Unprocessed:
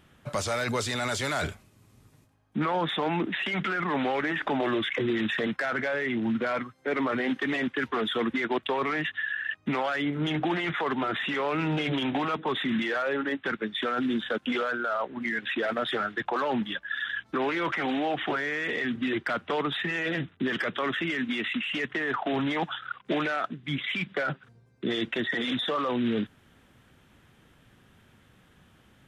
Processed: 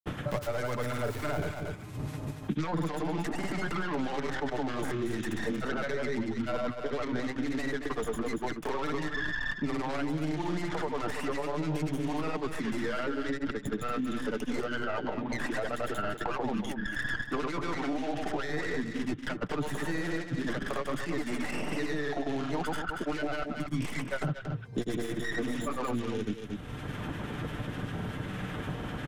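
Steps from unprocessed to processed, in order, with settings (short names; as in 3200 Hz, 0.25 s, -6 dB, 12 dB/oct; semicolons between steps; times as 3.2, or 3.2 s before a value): tracing distortion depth 0.4 ms; high shelf 2200 Hz -11.5 dB; comb 6.7 ms, depth 33%; reverse; compressor 6:1, threshold -36 dBFS, peak gain reduction 13.5 dB; reverse; harmonic tremolo 3.5 Hz, depth 50%, crossover 1300 Hz; grains 0.1 s, grains 20/s, pitch spread up and down by 0 st; echo 0.231 s -9.5 dB; three-band squash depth 100%; gain +8.5 dB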